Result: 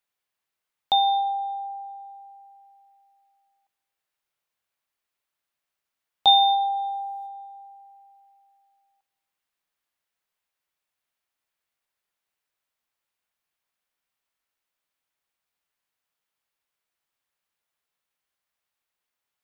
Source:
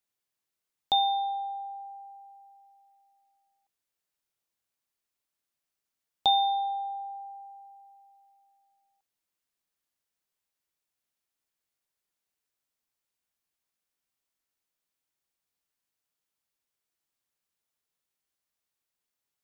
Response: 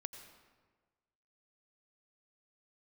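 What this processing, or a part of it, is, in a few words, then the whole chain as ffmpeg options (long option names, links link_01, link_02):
filtered reverb send: -filter_complex "[0:a]asettb=1/sr,asplit=3[link_01][link_02][link_03];[link_01]atrim=end=6.274[link_04];[link_02]atrim=start=6.27:end=7.27,asetpts=PTS-STARTPTS,afade=type=in:duration=0.004:curve=qsin,afade=type=out:start_time=0.996:duration=0.004:curve=qsin,highshelf=frequency=2700:gain=11[link_05];[link_03]atrim=start=7.266[link_06];[link_04][link_05]acrossfade=duration=0.004:curve1=hsin:curve2=qsin[link_07];[link_07][link_06]acrossfade=duration=0.004:curve1=qsin:curve2=hsin,asplit=2[link_08][link_09];[link_09]highpass=500,lowpass=3900[link_10];[1:a]atrim=start_sample=2205[link_11];[link_10][link_11]afir=irnorm=-1:irlink=0,volume=3dB[link_12];[link_08][link_12]amix=inputs=2:normalize=0"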